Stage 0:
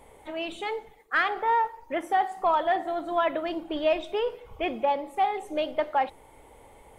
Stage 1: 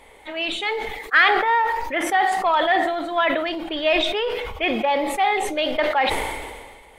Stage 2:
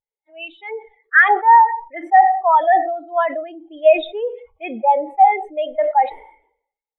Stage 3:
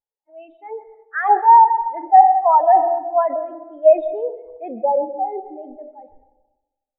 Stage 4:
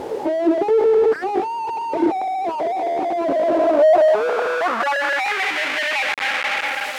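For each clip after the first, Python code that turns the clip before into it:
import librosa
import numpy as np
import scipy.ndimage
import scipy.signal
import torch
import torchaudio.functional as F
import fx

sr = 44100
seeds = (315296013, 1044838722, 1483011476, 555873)

y1 = fx.graphic_eq_10(x, sr, hz=(125, 2000, 4000), db=(-7, 8, 8))
y1 = fx.sustainer(y1, sr, db_per_s=36.0)
y1 = y1 * 10.0 ** (2.0 / 20.0)
y2 = fx.low_shelf(y1, sr, hz=130.0, db=-5.5)
y2 = fx.spectral_expand(y2, sr, expansion=2.5)
y2 = y2 * 10.0 ** (3.5 / 20.0)
y3 = fx.filter_sweep_lowpass(y2, sr, from_hz=850.0, to_hz=100.0, start_s=4.52, end_s=6.7, q=1.9)
y3 = fx.rev_plate(y3, sr, seeds[0], rt60_s=1.1, hf_ratio=0.3, predelay_ms=115, drr_db=14.0)
y3 = y3 * 10.0 ** (-4.0 / 20.0)
y4 = np.sign(y3) * np.sqrt(np.mean(np.square(y3)))
y4 = fx.filter_sweep_bandpass(y4, sr, from_hz=370.0, to_hz=2200.0, start_s=3.2, end_s=5.52, q=2.4)
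y4 = y4 * 10.0 ** (7.5 / 20.0)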